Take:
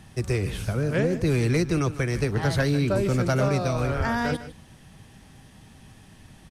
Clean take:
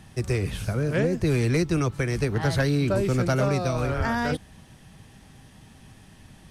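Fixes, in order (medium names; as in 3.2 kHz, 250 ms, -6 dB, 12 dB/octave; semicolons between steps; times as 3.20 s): inverse comb 153 ms -14.5 dB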